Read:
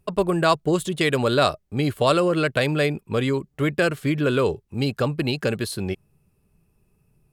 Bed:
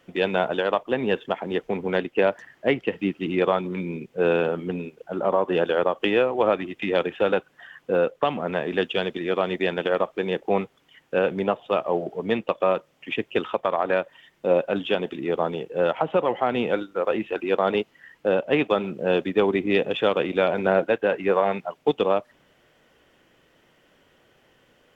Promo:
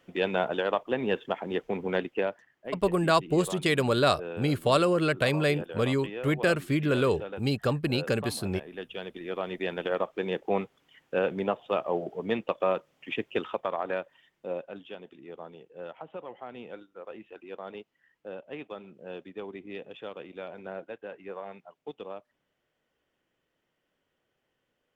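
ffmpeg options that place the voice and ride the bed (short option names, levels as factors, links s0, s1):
-filter_complex "[0:a]adelay=2650,volume=0.631[s0];[1:a]volume=2.37,afade=t=out:st=2.03:d=0.42:silence=0.237137,afade=t=in:st=8.71:d=1.49:silence=0.251189,afade=t=out:st=13.22:d=1.62:silence=0.199526[s1];[s0][s1]amix=inputs=2:normalize=0"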